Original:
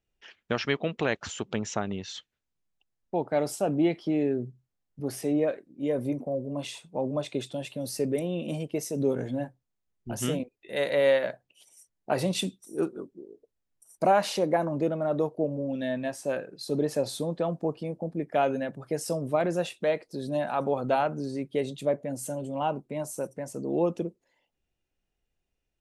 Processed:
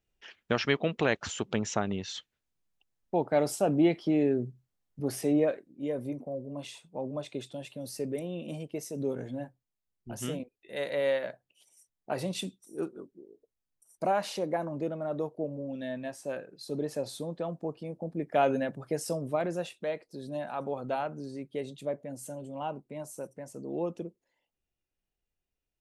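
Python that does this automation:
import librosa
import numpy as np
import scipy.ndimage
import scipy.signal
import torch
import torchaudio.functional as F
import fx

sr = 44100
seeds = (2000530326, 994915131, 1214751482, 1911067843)

y = fx.gain(x, sr, db=fx.line((5.38, 0.5), (6.02, -6.0), (17.79, -6.0), (18.54, 1.0), (19.84, -7.0)))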